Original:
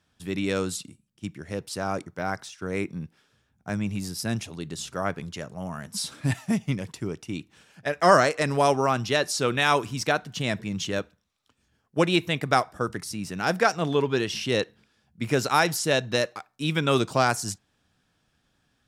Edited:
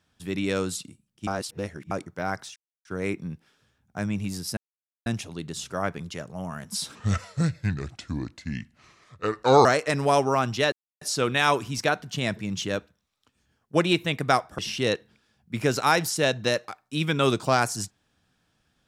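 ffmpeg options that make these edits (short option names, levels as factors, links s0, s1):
-filter_complex "[0:a]asplit=9[s0][s1][s2][s3][s4][s5][s6][s7][s8];[s0]atrim=end=1.272[s9];[s1]atrim=start=1.268:end=1.912,asetpts=PTS-STARTPTS,areverse[s10];[s2]atrim=start=1.908:end=2.56,asetpts=PTS-STARTPTS,afade=t=out:st=0.648:d=0.004:c=hsin,apad=pad_dur=0.29[s11];[s3]atrim=start=2.56:end=4.28,asetpts=PTS-STARTPTS,afade=t=in:d=0.004:c=hsin,afade=t=out:st=1.716:d=0.004:c=hsin,apad=pad_dur=0.49[s12];[s4]atrim=start=4.28:end=6.174,asetpts=PTS-STARTPTS,afade=t=in:d=0.004:c=hsin[s13];[s5]atrim=start=6.17:end=8.17,asetpts=PTS-STARTPTS,asetrate=32634,aresample=44100,atrim=end_sample=119189,asetpts=PTS-STARTPTS[s14];[s6]atrim=start=8.166:end=9.24,asetpts=PTS-STARTPTS,afade=t=out:st=1.07:d=0.004:c=hsin,apad=pad_dur=0.29[s15];[s7]atrim=start=9.24:end=12.812,asetpts=PTS-STARTPTS,afade=t=in:d=0.004:c=hsin[s16];[s8]atrim=start=14.258[s17];[s9][s10]acrossfade=d=0.004:c1=hsin:c2=hsin[s18];[s11][s12][s13]concat=n=3:v=0:a=1[s19];[s18][s19]acrossfade=d=0.004:c1=hsin:c2=hsin[s20];[s20][s14]acrossfade=d=0.004:c1=hsin:c2=hsin[s21];[s15][s16]concat=n=2:v=0:a=1[s22];[s21][s22]acrossfade=d=0.004:c1=hsin:c2=hsin[s23];[s23][s17]acrossfade=d=0.004:c1=hsin:c2=hsin"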